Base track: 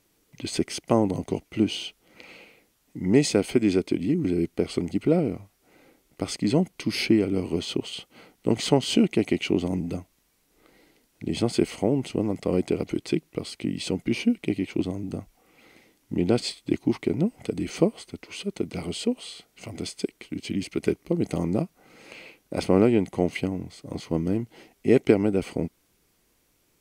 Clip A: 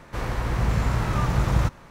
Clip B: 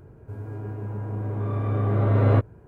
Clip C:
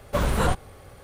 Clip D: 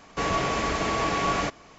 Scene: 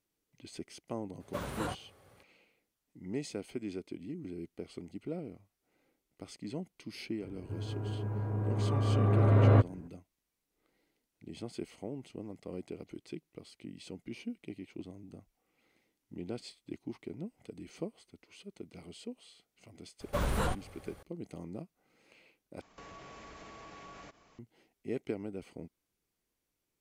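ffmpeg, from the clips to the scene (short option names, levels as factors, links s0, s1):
-filter_complex "[3:a]asplit=2[s0][s1];[0:a]volume=0.126[s2];[s0]highpass=100[s3];[s1]alimiter=limit=0.2:level=0:latency=1:release=202[s4];[4:a]acompressor=threshold=0.02:ratio=6:attack=3.2:release=140:knee=1:detection=peak[s5];[s2]asplit=2[s6][s7];[s6]atrim=end=22.614[s8];[s5]atrim=end=1.78,asetpts=PTS-STARTPTS,volume=0.211[s9];[s7]atrim=start=24.386[s10];[s3]atrim=end=1.03,asetpts=PTS-STARTPTS,volume=0.224,afade=t=in:d=0.004:c=hsin,afade=t=out:st=1.026:d=0.004:c=hsin,adelay=1200[s11];[2:a]atrim=end=2.67,asetpts=PTS-STARTPTS,volume=0.668,afade=t=in:d=0.004:c=hsin,afade=t=out:st=2.666:d=0.004:c=hsin,adelay=7210[s12];[s4]atrim=end=1.03,asetpts=PTS-STARTPTS,volume=0.473,afade=t=in:d=0.004:c=hsin,afade=t=out:st=1.026:d=0.004:c=hsin,adelay=20000[s13];[s8][s9]acrossfade=d=0.004:c1=hsin:c2=hsin[s14];[s14][s10]acrossfade=d=0.004:c1=hsin:c2=hsin[s15];[s15][s11][s12][s13]amix=inputs=4:normalize=0"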